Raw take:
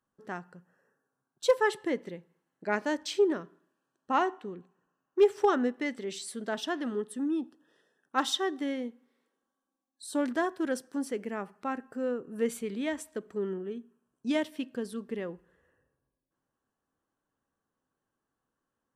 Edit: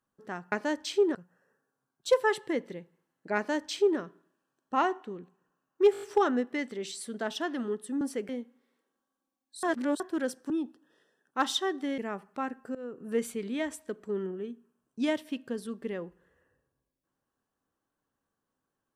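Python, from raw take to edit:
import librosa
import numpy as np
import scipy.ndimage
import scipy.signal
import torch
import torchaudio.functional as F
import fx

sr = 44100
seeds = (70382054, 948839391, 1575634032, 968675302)

y = fx.edit(x, sr, fx.duplicate(start_s=2.73, length_s=0.63, to_s=0.52),
    fx.stutter(start_s=5.29, slice_s=0.02, count=6),
    fx.swap(start_s=7.28, length_s=1.48, other_s=10.97, other_length_s=0.28),
    fx.reverse_span(start_s=10.1, length_s=0.37),
    fx.fade_in_from(start_s=12.02, length_s=0.28, floor_db=-19.5), tone=tone)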